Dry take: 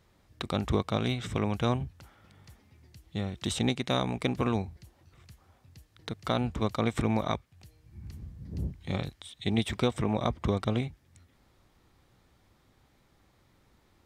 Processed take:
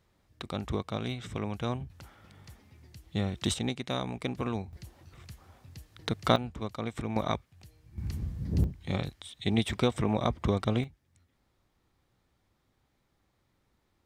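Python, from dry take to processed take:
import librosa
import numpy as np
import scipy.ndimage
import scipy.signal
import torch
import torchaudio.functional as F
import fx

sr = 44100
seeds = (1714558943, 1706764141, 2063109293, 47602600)

y = fx.gain(x, sr, db=fx.steps((0.0, -5.0), (1.9, 2.5), (3.54, -4.5), (4.73, 5.5), (6.36, -7.0), (7.16, 0.0), (7.98, 8.5), (8.64, 0.5), (10.84, -8.5)))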